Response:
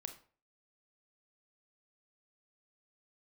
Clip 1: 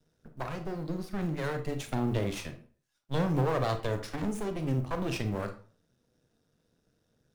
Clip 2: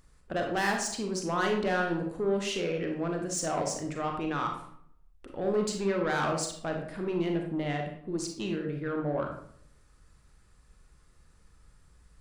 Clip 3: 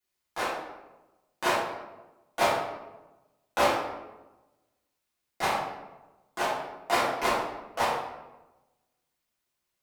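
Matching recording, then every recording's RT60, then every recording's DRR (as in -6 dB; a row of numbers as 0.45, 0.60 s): 1; 0.45, 0.65, 1.1 s; 6.5, 2.0, -11.5 dB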